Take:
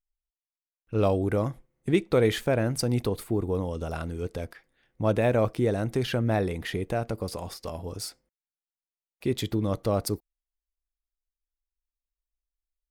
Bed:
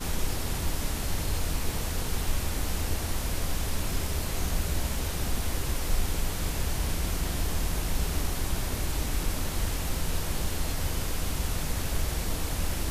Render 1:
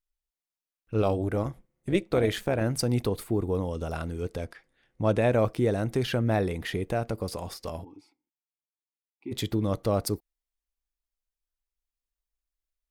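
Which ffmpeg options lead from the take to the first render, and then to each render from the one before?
ffmpeg -i in.wav -filter_complex "[0:a]asettb=1/sr,asplit=3[link_01][link_02][link_03];[link_01]atrim=end=1.024[link_04];[link_02]atrim=start=1.02:end=2.61,asetpts=PTS-STARTPTS,afade=type=in:duration=0.004:curve=qsin,afade=type=out:start_time=1.586:duration=0.004:curve=qsin,tremolo=f=200:d=0.571[link_05];[link_03]atrim=start=2.606[link_06];[link_04][link_05]acrossfade=duration=0.004:curve1=hsin:curve2=qsin[link_07];[link_07][link_06]acrossfade=duration=0.004:curve1=qsin:curve2=hsin,asettb=1/sr,asplit=3[link_08][link_09][link_10];[link_08]atrim=end=4.384[link_11];[link_09]atrim=start=4.38:end=5.33,asetpts=PTS-STARTPTS,afade=type=in:duration=0.004:curve=qsin,afade=type=out:start_time=0.946:duration=0.004:curve=qsin,lowpass=frequency=11000:width=0.5412,lowpass=frequency=11000:width=1.3066[link_12];[link_10]atrim=start=5.326[link_13];[link_11][link_12]acrossfade=duration=0.004:curve1=hsin:curve2=qsin[link_14];[link_14][link_13]acrossfade=duration=0.004:curve1=qsin:curve2=hsin,asplit=3[link_15][link_16][link_17];[link_15]afade=type=out:start_time=7.83:duration=0.02[link_18];[link_16]asplit=3[link_19][link_20][link_21];[link_19]bandpass=frequency=300:width_type=q:width=8,volume=0dB[link_22];[link_20]bandpass=frequency=870:width_type=q:width=8,volume=-6dB[link_23];[link_21]bandpass=frequency=2240:width_type=q:width=8,volume=-9dB[link_24];[link_22][link_23][link_24]amix=inputs=3:normalize=0,afade=type=in:start_time=7.83:duration=0.02,afade=type=out:start_time=9.31:duration=0.02[link_25];[link_17]afade=type=in:start_time=9.31:duration=0.02[link_26];[link_18][link_25][link_26]amix=inputs=3:normalize=0" out.wav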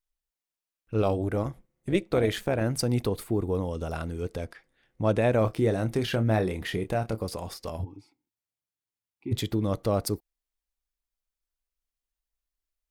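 ffmpeg -i in.wav -filter_complex "[0:a]asettb=1/sr,asplit=3[link_01][link_02][link_03];[link_01]atrim=end=5.384[link_04];[link_02]atrim=start=5.38:end=7.25,asetpts=PTS-STARTPTS,afade=type=in:duration=0.004:curve=qsin,afade=type=out:start_time=1.866:duration=0.004:curve=qsin,asplit=2[link_05][link_06];[link_06]adelay=27,volume=-9.5dB[link_07];[link_05][link_07]amix=inputs=2:normalize=0,atrim=end_sample=82467[link_08];[link_03]atrim=start=7.246[link_09];[link_04][link_08]acrossfade=duration=0.004:curve1=hsin:curve2=qsin[link_10];[link_10][link_09]acrossfade=duration=0.004:curve1=qsin:curve2=hsin,asettb=1/sr,asplit=3[link_11][link_12][link_13];[link_11]atrim=end=7.794[link_14];[link_12]atrim=start=7.79:end=9.39,asetpts=PTS-STARTPTS,afade=type=in:duration=0.004:curve=qsin,afade=type=out:start_time=1.596:duration=0.004:curve=qsin,equalizer=frequency=100:width_type=o:width=1.3:gain=14[link_15];[link_13]atrim=start=9.386[link_16];[link_14][link_15]acrossfade=duration=0.004:curve1=hsin:curve2=qsin[link_17];[link_17][link_16]acrossfade=duration=0.004:curve1=qsin:curve2=hsin" out.wav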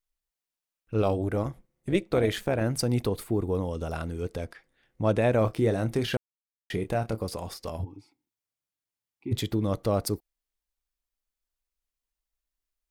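ffmpeg -i in.wav -filter_complex "[0:a]asplit=3[link_01][link_02][link_03];[link_01]atrim=end=6.17,asetpts=PTS-STARTPTS,afade=type=out:start_time=6.166:duration=0.004:curve=hsin[link_04];[link_02]atrim=start=6.17:end=6.7,asetpts=PTS-STARTPTS,volume=0[link_05];[link_03]atrim=start=6.7,asetpts=PTS-STARTPTS,afade=type=in:duration=0.004:curve=hsin[link_06];[link_04][link_05][link_06]concat=n=3:v=0:a=1" out.wav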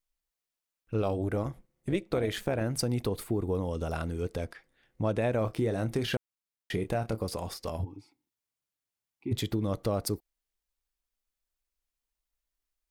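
ffmpeg -i in.wav -af "acompressor=threshold=-26dB:ratio=3" out.wav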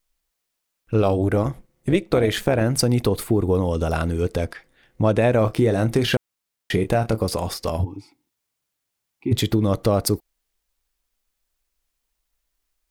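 ffmpeg -i in.wav -af "volume=10.5dB" out.wav

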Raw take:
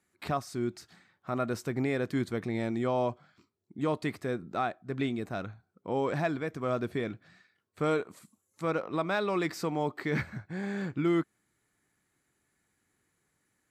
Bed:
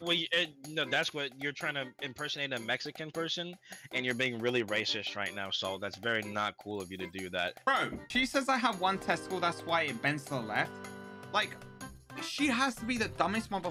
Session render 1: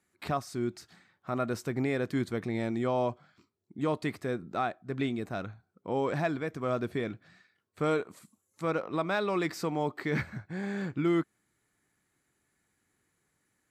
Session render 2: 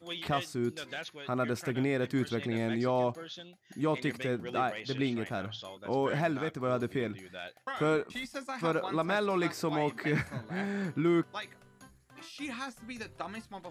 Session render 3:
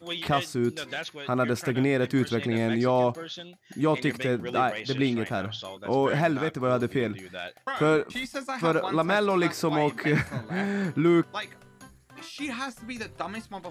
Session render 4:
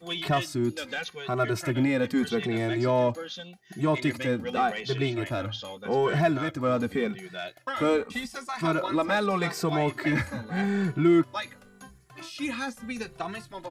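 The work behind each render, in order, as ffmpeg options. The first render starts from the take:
ffmpeg -i in.wav -af anull out.wav
ffmpeg -i in.wav -i bed.wav -filter_complex "[1:a]volume=-9.5dB[link_01];[0:a][link_01]amix=inputs=2:normalize=0" out.wav
ffmpeg -i in.wav -af "volume=6dB" out.wav
ffmpeg -i in.wav -filter_complex "[0:a]asplit=2[link_01][link_02];[link_02]asoftclip=type=tanh:threshold=-26.5dB,volume=-6dB[link_03];[link_01][link_03]amix=inputs=2:normalize=0,asplit=2[link_04][link_05];[link_05]adelay=2.2,afreqshift=-0.84[link_06];[link_04][link_06]amix=inputs=2:normalize=1" out.wav

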